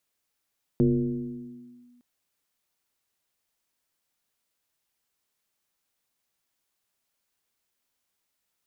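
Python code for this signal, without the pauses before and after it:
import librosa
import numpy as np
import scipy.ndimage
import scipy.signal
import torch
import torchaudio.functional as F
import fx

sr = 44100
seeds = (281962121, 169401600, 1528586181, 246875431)

y = fx.fm2(sr, length_s=1.21, level_db=-16.0, carrier_hz=244.0, ratio=0.45, index=1.3, index_s=1.13, decay_s=1.78, shape='linear')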